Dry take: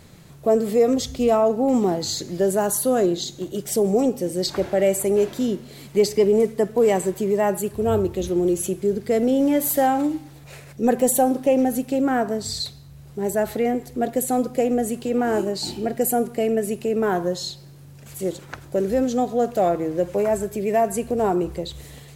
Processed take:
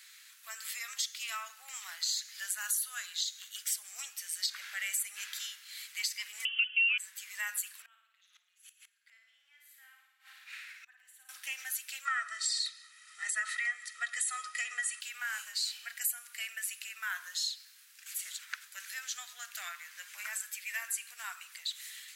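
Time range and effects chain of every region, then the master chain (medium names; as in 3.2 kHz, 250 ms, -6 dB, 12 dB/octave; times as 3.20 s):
6.45–6.98 s: comb 6.5 ms, depth 87% + frequency inversion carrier 3.2 kHz
7.82–11.29 s: three-band isolator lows -16 dB, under 390 Hz, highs -14 dB, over 3.7 kHz + flutter echo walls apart 9.5 m, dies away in 0.93 s + inverted gate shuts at -20 dBFS, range -25 dB
12.05–15.01 s: brick-wall FIR low-pass 11 kHz + comb 1.6 ms, depth 90% + small resonant body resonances 370/1300/1900 Hz, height 11 dB, ringing for 20 ms
whole clip: steep high-pass 1.5 kHz 36 dB/octave; compression 3:1, threshold -33 dBFS; trim +1 dB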